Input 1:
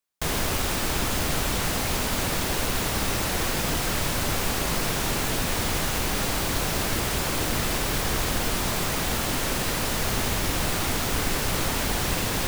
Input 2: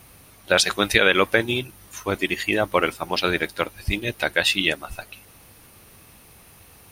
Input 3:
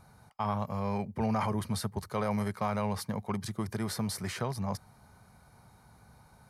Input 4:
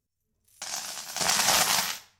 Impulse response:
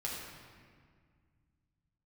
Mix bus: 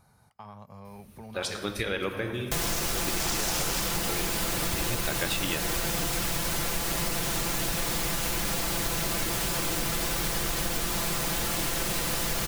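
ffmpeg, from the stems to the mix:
-filter_complex "[0:a]aecho=1:1:5.9:0.65,adelay=2300,volume=-1.5dB[a];[1:a]lowshelf=f=370:g=10.5,adelay=850,volume=-7.5dB,asplit=2[b][c];[c]volume=-14dB[d];[2:a]acompressor=threshold=-45dB:ratio=2,volume=-5dB,asplit=3[e][f][g];[f]volume=-22dB[h];[3:a]alimiter=limit=-18.5dB:level=0:latency=1,adelay=2000,volume=1dB[i];[g]apad=whole_len=342241[j];[b][j]sidechaincompress=threshold=-55dB:ratio=8:attack=16:release=276[k];[4:a]atrim=start_sample=2205[l];[d][h]amix=inputs=2:normalize=0[m];[m][l]afir=irnorm=-1:irlink=0[n];[a][k][e][i][n]amix=inputs=5:normalize=0,highshelf=f=4.8k:g=4.5,acompressor=threshold=-25dB:ratio=6"

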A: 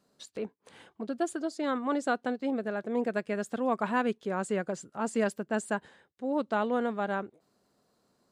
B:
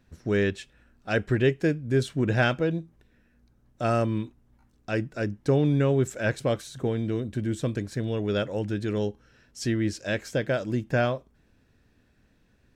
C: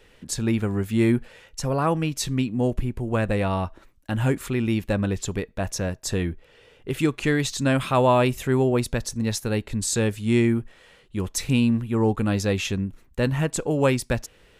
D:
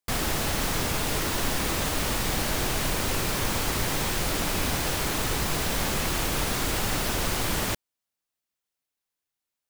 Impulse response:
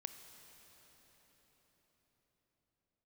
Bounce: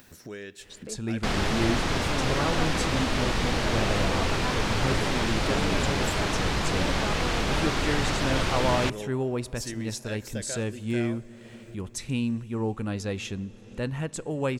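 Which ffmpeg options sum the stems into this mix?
-filter_complex "[0:a]adelay=500,volume=-6.5dB[a];[1:a]aemphasis=mode=production:type=bsi,alimiter=limit=-17dB:level=0:latency=1:release=148,dynaudnorm=f=320:g=17:m=6dB,volume=-15dB,asplit=3[b][c][d];[b]atrim=end=6.2,asetpts=PTS-STARTPTS,afade=t=out:st=6.196:d=0.004:c=hsin[e];[c]atrim=start=6.2:end=8.31,asetpts=PTS-STARTPTS,volume=0[f];[d]atrim=start=8.31,asetpts=PTS-STARTPTS,afade=t=in:d=0.004:c=hsin[g];[e][f][g]concat=n=3:v=0:a=1,asplit=2[h][i];[i]volume=-6dB[j];[2:a]lowpass=f=11k:w=0.5412,lowpass=f=11k:w=1.3066,adelay=600,volume=-10dB,asplit=2[k][l];[l]volume=-6dB[m];[3:a]lowpass=4.8k,adelay=1150,volume=1.5dB[n];[4:a]atrim=start_sample=2205[o];[j][m]amix=inputs=2:normalize=0[p];[p][o]afir=irnorm=-1:irlink=0[q];[a][h][k][n][q]amix=inputs=5:normalize=0,acompressor=mode=upward:threshold=-35dB:ratio=2.5"

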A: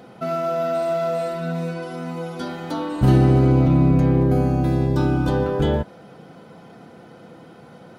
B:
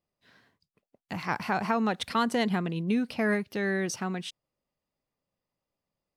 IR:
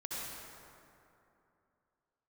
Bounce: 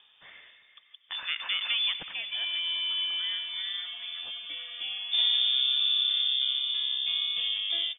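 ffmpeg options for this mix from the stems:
-filter_complex "[0:a]highpass=140,adelay=2100,volume=-9dB[a];[1:a]asoftclip=type=tanh:threshold=-19dB,volume=-2dB,afade=t=out:st=1.85:d=0.42:silence=0.281838,asplit=2[b][c];[c]volume=-11.5dB[d];[2:a]atrim=start_sample=2205[e];[d][e]afir=irnorm=-1:irlink=0[f];[a][b][f]amix=inputs=3:normalize=0,highpass=46,acompressor=mode=upward:threshold=-38dB:ratio=2.5,lowpass=f=3.1k:t=q:w=0.5098,lowpass=f=3.1k:t=q:w=0.6013,lowpass=f=3.1k:t=q:w=0.9,lowpass=f=3.1k:t=q:w=2.563,afreqshift=-3700"

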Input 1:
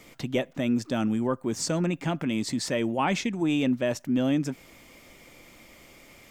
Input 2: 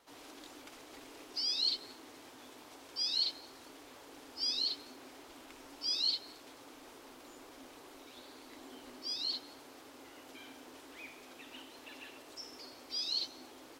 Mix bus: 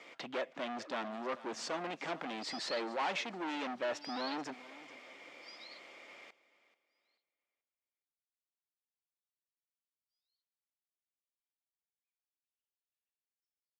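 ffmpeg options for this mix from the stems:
-filter_complex "[0:a]highpass=110,volume=31dB,asoftclip=hard,volume=-31dB,volume=0.5dB,asplit=3[a][b][c];[b]volume=-17.5dB[d];[1:a]aderivative,adelay=1050,volume=-4.5dB[e];[c]apad=whole_len=654687[f];[e][f]sidechaingate=range=-40dB:threshold=-50dB:ratio=16:detection=peak[g];[d]aecho=0:1:435|870|1305|1740:1|0.29|0.0841|0.0244[h];[a][g][h]amix=inputs=3:normalize=0,highpass=500,lowpass=3.6k"

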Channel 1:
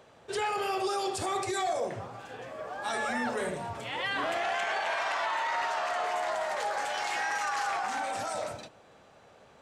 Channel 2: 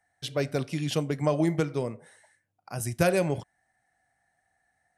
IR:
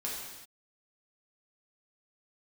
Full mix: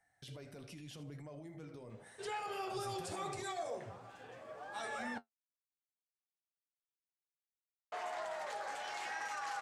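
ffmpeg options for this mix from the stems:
-filter_complex "[0:a]adelay=1900,volume=-6.5dB,asplit=3[a][b][c];[a]atrim=end=5.18,asetpts=PTS-STARTPTS,afade=t=out:st=5.176:d=0.004:c=hsin[d];[b]atrim=start=5.18:end=7.92,asetpts=PTS-STARTPTS,volume=0[e];[c]atrim=start=7.92,asetpts=PTS-STARTPTS,afade=t=in:d=0.004:c=hsin[f];[d][e][f]concat=n=3:v=0:a=1[g];[1:a]acompressor=threshold=-32dB:ratio=6,alimiter=level_in=15.5dB:limit=-24dB:level=0:latency=1:release=11,volume=-15.5dB,volume=0.5dB,asplit=2[h][i];[i]volume=-15dB,aecho=0:1:78|156|234|312:1|0.26|0.0676|0.0176[j];[g][h][j]amix=inputs=3:normalize=0,flanger=delay=6:depth=5.2:regen=-52:speed=0.84:shape=sinusoidal"

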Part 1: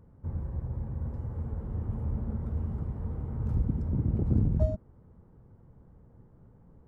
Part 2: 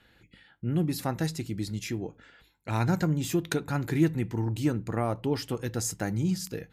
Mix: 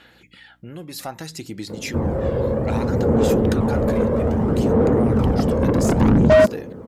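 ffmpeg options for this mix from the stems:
-filter_complex "[0:a]equalizer=f=250:t=o:w=1:g=8,equalizer=f=500:t=o:w=1:g=11,equalizer=f=1k:t=o:w=1:g=-4,adelay=1700,volume=0.5dB[a];[1:a]equalizer=f=1.8k:t=o:w=1.9:g=-3,acompressor=threshold=-37dB:ratio=3,aeval=exprs='val(0)+0.001*(sin(2*PI*60*n/s)+sin(2*PI*2*60*n/s)/2+sin(2*PI*3*60*n/s)/3+sin(2*PI*4*60*n/s)/4+sin(2*PI*5*60*n/s)/5)':c=same,volume=-11dB[b];[a][b]amix=inputs=2:normalize=0,asplit=2[c][d];[d]highpass=f=720:p=1,volume=30dB,asoftclip=type=tanh:threshold=-7.5dB[e];[c][e]amix=inputs=2:normalize=0,lowpass=f=7.4k:p=1,volume=-6dB,aphaser=in_gain=1:out_gain=1:delay=1.9:decay=0.38:speed=0.62:type=sinusoidal"

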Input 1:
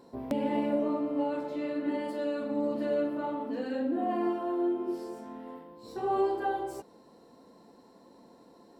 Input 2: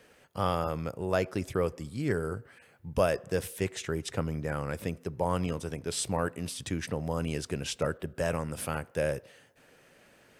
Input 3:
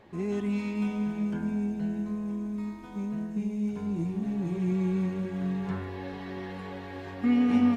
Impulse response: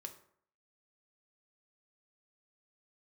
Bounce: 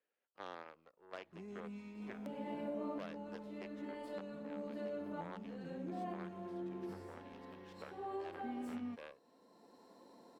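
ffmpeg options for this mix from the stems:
-filter_complex "[0:a]lowshelf=f=160:g=-12,adelay=1950,volume=-3dB[a];[1:a]aeval=exprs='0.266*(cos(1*acos(clip(val(0)/0.266,-1,1)))-cos(1*PI/2))+0.00668*(cos(3*acos(clip(val(0)/0.266,-1,1)))-cos(3*PI/2))+0.075*(cos(6*acos(clip(val(0)/0.266,-1,1)))-cos(6*PI/2))+0.0237*(cos(7*acos(clip(val(0)/0.266,-1,1)))-cos(7*PI/2))+0.0668*(cos(8*acos(clip(val(0)/0.266,-1,1)))-cos(8*PI/2))':c=same,acrossover=split=250 4600:gain=0.0631 1 0.126[b][c][d];[b][c][d]amix=inputs=3:normalize=0,volume=-20dB,asplit=2[e][f];[2:a]adelay=1200,volume=-19dB[g];[f]apad=whole_len=473808[h];[a][h]sidechaincompress=threshold=-56dB:ratio=5:attack=6.7:release=892[i];[i][e][g]amix=inputs=3:normalize=0,acompressor=threshold=-41dB:ratio=2"

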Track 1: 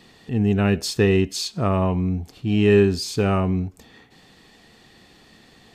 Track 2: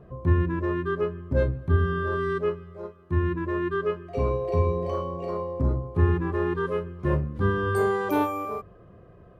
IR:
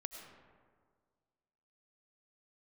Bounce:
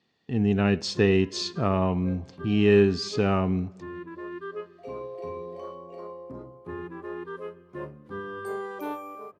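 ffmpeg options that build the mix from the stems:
-filter_complex "[0:a]highpass=98,agate=range=-18dB:threshold=-42dB:ratio=16:detection=peak,lowpass=f=6.2k:w=0.5412,lowpass=f=6.2k:w=1.3066,volume=-3.5dB,asplit=3[a][b][c];[b]volume=-18dB[d];[1:a]highpass=230,adelay=700,volume=-9.5dB,asplit=2[e][f];[f]volume=-23dB[g];[c]apad=whole_len=445140[h];[e][h]sidechaincompress=threshold=-33dB:ratio=8:attack=16:release=227[i];[2:a]atrim=start_sample=2205[j];[d][g]amix=inputs=2:normalize=0[k];[k][j]afir=irnorm=-1:irlink=0[l];[a][i][l]amix=inputs=3:normalize=0"

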